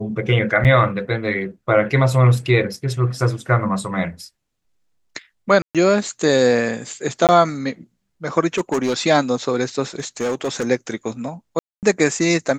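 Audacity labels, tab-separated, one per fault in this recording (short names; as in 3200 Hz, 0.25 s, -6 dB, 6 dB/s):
0.640000	0.650000	gap 8.5 ms
5.620000	5.750000	gap 0.127 s
7.270000	7.290000	gap 18 ms
8.550000	8.940000	clipped -15 dBFS
9.990000	10.670000	clipped -17.5 dBFS
11.590000	11.830000	gap 0.238 s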